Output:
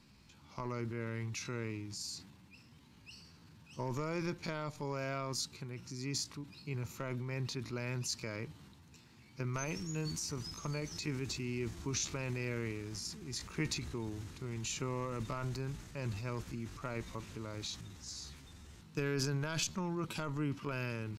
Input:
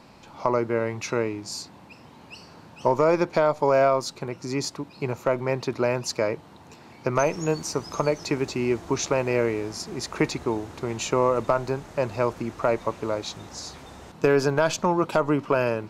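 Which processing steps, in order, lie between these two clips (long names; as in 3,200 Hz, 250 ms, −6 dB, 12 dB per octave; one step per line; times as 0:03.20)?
tempo change 0.75×
transient designer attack 0 dB, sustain +6 dB
guitar amp tone stack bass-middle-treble 6-0-2
level +6.5 dB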